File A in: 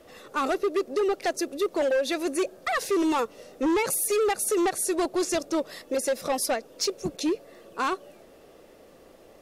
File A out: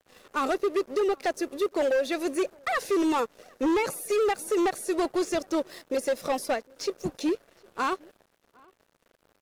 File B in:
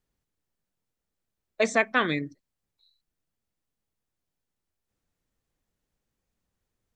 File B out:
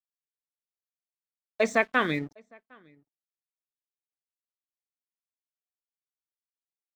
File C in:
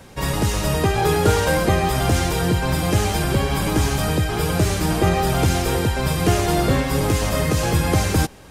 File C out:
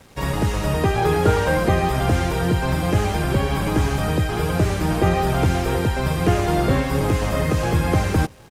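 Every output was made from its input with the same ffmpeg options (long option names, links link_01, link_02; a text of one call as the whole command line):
ffmpeg -i in.wav -filter_complex "[0:a]aeval=exprs='sgn(val(0))*max(abs(val(0))-0.00398,0)':channel_layout=same,asplit=2[link_01][link_02];[link_02]adelay=758,volume=-28dB,highshelf=frequency=4000:gain=-17.1[link_03];[link_01][link_03]amix=inputs=2:normalize=0,acrossover=split=2800[link_04][link_05];[link_05]acompressor=threshold=-36dB:ratio=4:attack=1:release=60[link_06];[link_04][link_06]amix=inputs=2:normalize=0" out.wav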